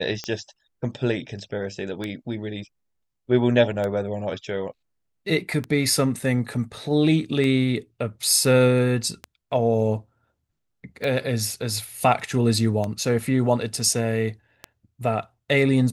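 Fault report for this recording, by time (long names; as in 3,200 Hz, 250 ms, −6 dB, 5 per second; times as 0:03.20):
scratch tick 33 1/3 rpm −15 dBFS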